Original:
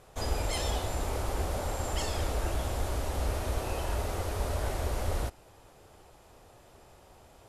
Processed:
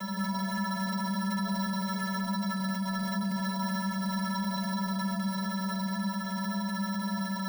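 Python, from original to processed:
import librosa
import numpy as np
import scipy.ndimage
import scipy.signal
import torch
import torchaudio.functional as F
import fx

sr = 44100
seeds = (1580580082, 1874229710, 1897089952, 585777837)

p1 = x + fx.echo_single(x, sr, ms=803, db=-17.0, dry=0)
p2 = fx.fuzz(p1, sr, gain_db=55.0, gate_db=-57.0)
p3 = fx.rider(p2, sr, range_db=10, speed_s=0.5)
p4 = p2 + F.gain(torch.from_numpy(p3), -3.0).numpy()
p5 = fx.vocoder(p4, sr, bands=8, carrier='square', carrier_hz=191.0)
p6 = fx.sample_hold(p5, sr, seeds[0], rate_hz=4600.0, jitter_pct=0)
p7 = fx.stiff_resonator(p6, sr, f0_hz=200.0, decay_s=0.75, stiffness=0.03)
p8 = fx.env_flatten(p7, sr, amount_pct=50)
y = F.gain(torch.from_numpy(p8), -2.0).numpy()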